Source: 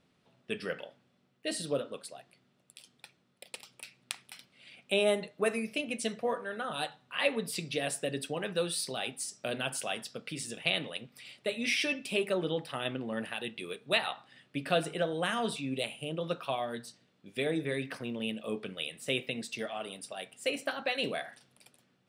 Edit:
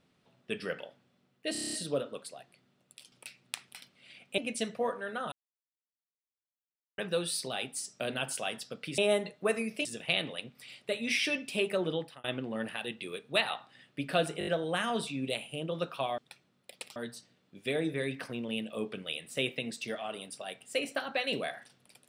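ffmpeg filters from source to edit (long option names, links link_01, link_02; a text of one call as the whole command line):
ffmpeg -i in.wav -filter_complex "[0:a]asplit=21[link_01][link_02][link_03][link_04][link_05][link_06][link_07][link_08][link_09][link_10][link_11][link_12][link_13][link_14][link_15][link_16][link_17][link_18][link_19][link_20][link_21];[link_01]atrim=end=1.552[link_22];[link_02]atrim=start=1.518:end=1.552[link_23];[link_03]atrim=start=1.518:end=1.552[link_24];[link_04]atrim=start=1.518:end=1.552[link_25];[link_05]atrim=start=1.518:end=1.552[link_26];[link_06]atrim=start=1.518:end=1.552[link_27];[link_07]atrim=start=1.518:end=1.552[link_28];[link_08]atrim=start=1.518:end=2.912[link_29];[link_09]atrim=start=3.688:end=4.952[link_30];[link_10]atrim=start=5.818:end=6.76,asetpts=PTS-STARTPTS,afade=type=out:start_time=0.938:duration=0.004:curve=hsin[link_31];[link_11]atrim=start=6.76:end=8.42,asetpts=PTS-STARTPTS,volume=0[link_32];[link_12]atrim=start=8.42:end=10.422,asetpts=PTS-STARTPTS,afade=type=in:duration=0.004:curve=hsin[link_33];[link_13]atrim=start=4.948:end=5.822[link_34];[link_14]atrim=start=10.418:end=12.81,asetpts=PTS-STARTPTS,afade=type=out:start_time=2.092:duration=0.3[link_35];[link_15]atrim=start=12.81:end=14.982,asetpts=PTS-STARTPTS,afade=type=in:duration=0.004:curve=hsin[link_36];[link_16]atrim=start=14.958:end=14.982[link_37];[link_17]atrim=start=14.958:end=14.982[link_38];[link_18]atrim=start=14.958:end=14.982[link_39];[link_19]atrim=start=14.958:end=16.672[link_40];[link_20]atrim=start=2.908:end=3.692[link_41];[link_21]atrim=start=16.668[link_42];[link_22][link_23]acrossfade=duration=0.004:curve1=hsin:curve2=hsin[link_43];[link_43][link_24]acrossfade=duration=0.004:curve1=hsin:curve2=hsin[link_44];[link_44][link_25]acrossfade=duration=0.004:curve1=hsin:curve2=hsin[link_45];[link_45][link_26]acrossfade=duration=0.004:curve1=hsin:curve2=hsin[link_46];[link_46][link_27]acrossfade=duration=0.004:curve1=hsin:curve2=hsin[link_47];[link_47][link_28]acrossfade=duration=0.004:curve1=hsin:curve2=hsin[link_48];[link_48][link_29]acrossfade=duration=0.004:curve1=hsin:curve2=hsin[link_49];[link_49][link_30]acrossfade=duration=0.004:curve1=hsin:curve2=hsin[link_50];[link_31][link_32][link_33]concat=n=3:v=0:a=1[link_51];[link_50][link_51]acrossfade=duration=0.004:curve1=hsin:curve2=hsin[link_52];[link_52][link_34]acrossfade=duration=0.004:curve1=hsin:curve2=hsin[link_53];[link_35][link_36]concat=n=2:v=0:a=1[link_54];[link_53][link_54]acrossfade=duration=0.004:curve1=hsin:curve2=hsin[link_55];[link_55][link_37]acrossfade=duration=0.004:curve1=hsin:curve2=hsin[link_56];[link_56][link_38]acrossfade=duration=0.004:curve1=hsin:curve2=hsin[link_57];[link_57][link_39]acrossfade=duration=0.004:curve1=hsin:curve2=hsin[link_58];[link_58][link_40]acrossfade=duration=0.004:curve1=hsin:curve2=hsin[link_59];[link_59][link_41]acrossfade=duration=0.004:curve1=hsin:curve2=hsin[link_60];[link_60][link_42]acrossfade=duration=0.004:curve1=hsin:curve2=hsin" out.wav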